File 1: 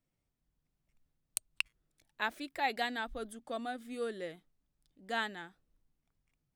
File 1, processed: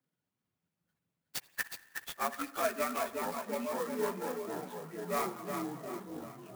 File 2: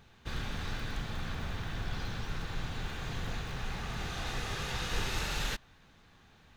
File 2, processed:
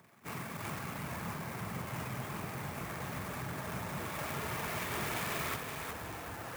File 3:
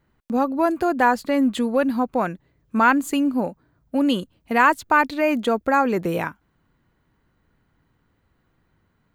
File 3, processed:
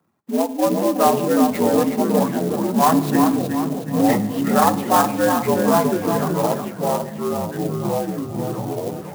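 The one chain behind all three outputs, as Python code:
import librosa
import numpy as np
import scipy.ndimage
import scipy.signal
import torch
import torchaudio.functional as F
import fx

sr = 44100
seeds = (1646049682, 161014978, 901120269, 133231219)

y = fx.partial_stretch(x, sr, pct=82)
y = scipy.signal.sosfilt(scipy.signal.butter(2, 6400.0, 'lowpass', fs=sr, output='sos'), y)
y = fx.dereverb_blind(y, sr, rt60_s=0.69)
y = scipy.signal.sosfilt(scipy.signal.butter(4, 120.0, 'highpass', fs=sr, output='sos'), y)
y = fx.echo_feedback(y, sr, ms=368, feedback_pct=45, wet_db=-6.0)
y = fx.rev_spring(y, sr, rt60_s=1.1, pass_ms=(51, 58), chirp_ms=35, drr_db=14.5)
y = fx.echo_pitch(y, sr, ms=270, semitones=-5, count=3, db_per_echo=-6.0)
y = fx.clock_jitter(y, sr, seeds[0], jitter_ms=0.048)
y = y * 10.0 ** (2.5 / 20.0)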